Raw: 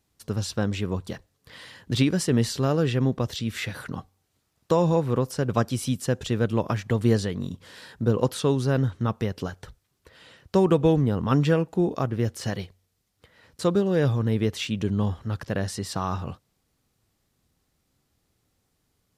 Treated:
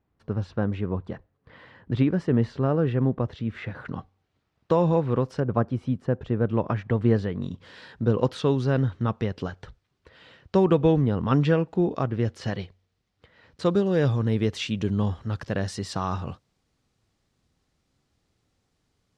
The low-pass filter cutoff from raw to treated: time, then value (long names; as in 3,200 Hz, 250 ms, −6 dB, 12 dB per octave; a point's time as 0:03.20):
1,600 Hz
from 0:03.85 3,100 Hz
from 0:05.40 1,300 Hz
from 0:06.47 2,100 Hz
from 0:07.42 4,000 Hz
from 0:13.66 6,700 Hz